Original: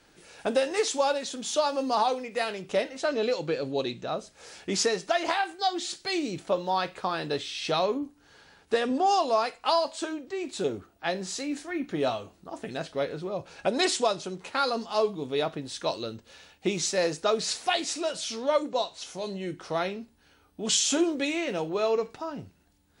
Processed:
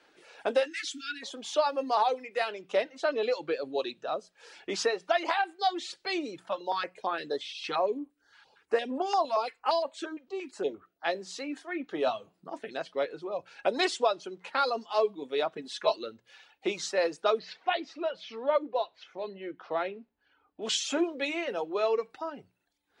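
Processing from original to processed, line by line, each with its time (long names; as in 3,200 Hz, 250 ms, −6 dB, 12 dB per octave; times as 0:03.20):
0:00.67–0:01.22: time-frequency box erased 340–1,300 Hz
0:03.76–0:04.53: notch filter 2,100 Hz, Q 8.4
0:06.49–0:11.05: notch on a step sequencer 8.7 Hz 440–5,100 Hz
0:12.06–0:12.60: parametric band 160 Hz +13 dB 0.91 octaves
0:15.55–0:15.96: comb filter 4.7 ms, depth 91%
0:17.39–0:20.62: high-frequency loss of the air 260 metres
whole clip: three-way crossover with the lows and the highs turned down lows −19 dB, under 280 Hz, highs −12 dB, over 4,400 Hz; reverb reduction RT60 0.79 s; mains-hum notches 60/120/180 Hz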